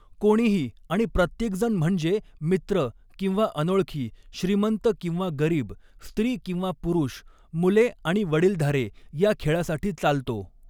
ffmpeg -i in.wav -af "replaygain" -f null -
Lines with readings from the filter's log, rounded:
track_gain = +4.3 dB
track_peak = 0.258